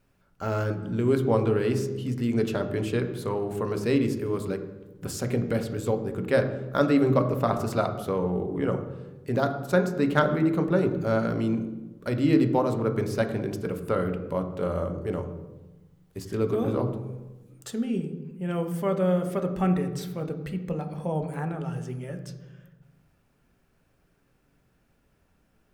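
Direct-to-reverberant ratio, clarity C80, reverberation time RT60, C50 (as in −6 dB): 6.0 dB, 11.5 dB, 1.1 s, 10.0 dB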